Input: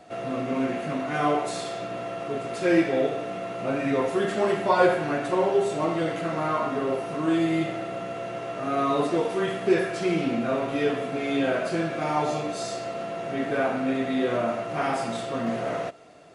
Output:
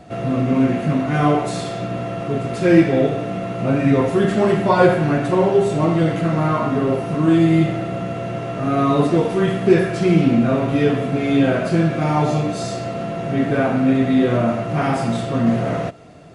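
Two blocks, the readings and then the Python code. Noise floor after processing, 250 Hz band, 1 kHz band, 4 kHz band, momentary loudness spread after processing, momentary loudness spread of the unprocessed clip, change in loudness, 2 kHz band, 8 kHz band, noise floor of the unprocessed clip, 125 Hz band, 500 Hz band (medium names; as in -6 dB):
-27 dBFS, +10.5 dB, +4.5 dB, +4.0 dB, 10 LU, 9 LU, +8.0 dB, +4.5 dB, no reading, -34 dBFS, +16.5 dB, +6.0 dB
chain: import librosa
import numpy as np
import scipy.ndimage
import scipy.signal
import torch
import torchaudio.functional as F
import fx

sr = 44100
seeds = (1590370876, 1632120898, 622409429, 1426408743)

y = fx.bass_treble(x, sr, bass_db=14, treble_db=-1)
y = y * librosa.db_to_amplitude(4.5)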